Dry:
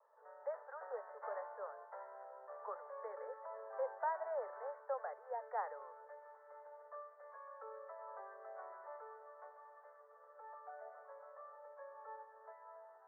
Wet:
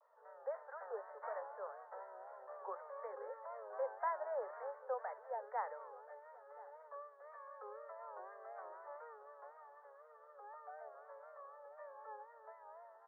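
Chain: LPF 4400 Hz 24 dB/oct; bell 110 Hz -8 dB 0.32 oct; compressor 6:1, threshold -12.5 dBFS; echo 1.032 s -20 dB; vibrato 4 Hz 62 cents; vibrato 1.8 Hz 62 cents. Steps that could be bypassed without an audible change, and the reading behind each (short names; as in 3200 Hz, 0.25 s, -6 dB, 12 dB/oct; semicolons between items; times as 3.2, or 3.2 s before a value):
LPF 4400 Hz: input band ends at 2000 Hz; bell 110 Hz: input band starts at 360 Hz; compressor, threshold -12.5 dBFS: input peak -27.0 dBFS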